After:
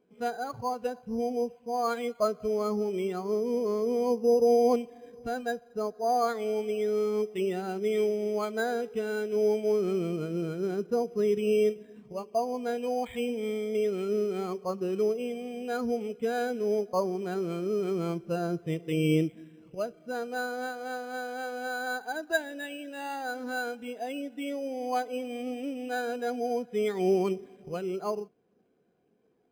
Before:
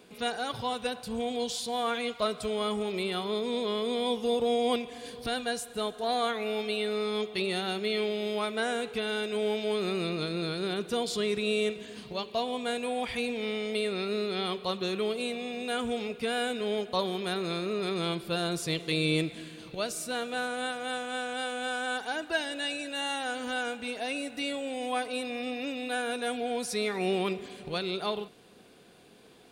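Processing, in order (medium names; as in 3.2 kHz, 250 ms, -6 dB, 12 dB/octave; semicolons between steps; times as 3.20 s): careless resampling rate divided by 8×, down filtered, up hold; spectral contrast expander 1.5:1; trim +2.5 dB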